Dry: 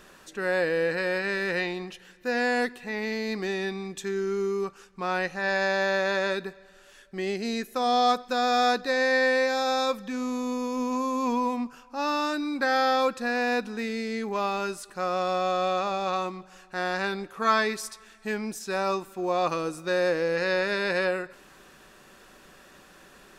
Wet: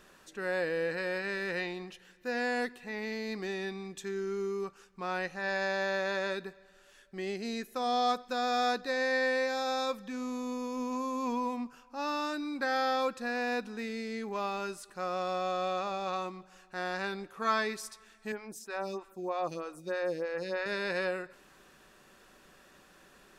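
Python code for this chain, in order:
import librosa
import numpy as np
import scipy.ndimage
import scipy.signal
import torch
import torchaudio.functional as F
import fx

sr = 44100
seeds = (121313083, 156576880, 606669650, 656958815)

y = fx.stagger_phaser(x, sr, hz=3.2, at=(18.32, 20.66))
y = F.gain(torch.from_numpy(y), -6.5).numpy()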